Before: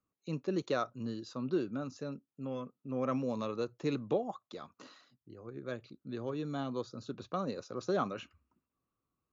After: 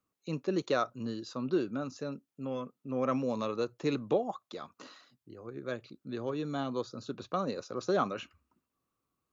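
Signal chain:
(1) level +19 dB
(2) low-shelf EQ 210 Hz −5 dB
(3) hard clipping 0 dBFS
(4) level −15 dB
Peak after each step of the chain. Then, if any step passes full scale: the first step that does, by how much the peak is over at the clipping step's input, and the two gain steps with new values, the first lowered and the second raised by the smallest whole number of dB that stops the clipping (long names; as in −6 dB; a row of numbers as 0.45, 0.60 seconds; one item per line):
−0.5, −1.5, −1.5, −16.5 dBFS
no step passes full scale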